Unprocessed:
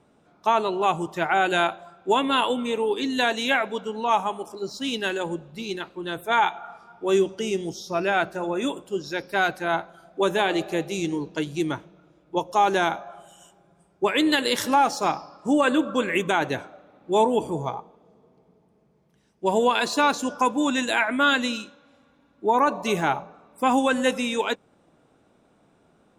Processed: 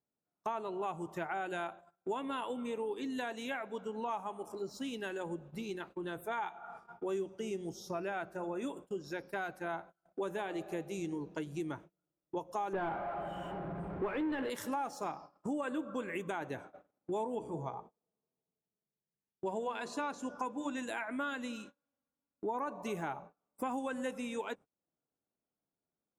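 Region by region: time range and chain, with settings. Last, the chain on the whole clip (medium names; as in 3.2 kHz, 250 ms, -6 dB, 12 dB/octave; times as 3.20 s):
12.73–14.50 s: de-hum 120.5 Hz, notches 28 + power-law waveshaper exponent 0.5 + distance through air 470 m
17.35–20.77 s: low-pass 8.4 kHz + hum notches 60/120/180/240/300/360/420/480/540/600 Hz
whole clip: compression 3:1, threshold -38 dBFS; peaking EQ 4 kHz -9 dB 1.4 oct; gate -49 dBFS, range -32 dB; trim -1 dB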